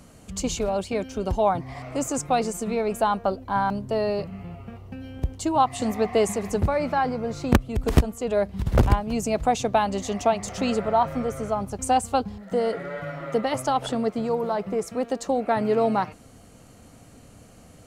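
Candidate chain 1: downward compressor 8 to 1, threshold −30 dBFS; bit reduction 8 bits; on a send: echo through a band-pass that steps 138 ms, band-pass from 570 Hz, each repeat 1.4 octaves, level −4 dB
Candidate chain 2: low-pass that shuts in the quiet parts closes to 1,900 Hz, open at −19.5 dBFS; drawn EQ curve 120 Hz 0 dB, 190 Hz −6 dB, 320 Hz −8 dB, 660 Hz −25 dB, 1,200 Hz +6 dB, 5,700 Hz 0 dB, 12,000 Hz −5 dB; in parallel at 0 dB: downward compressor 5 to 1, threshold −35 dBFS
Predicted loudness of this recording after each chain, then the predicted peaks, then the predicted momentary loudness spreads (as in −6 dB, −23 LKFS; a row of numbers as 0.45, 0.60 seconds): −34.0, −27.5 LKFS; −15.5, −1.5 dBFS; 6, 9 LU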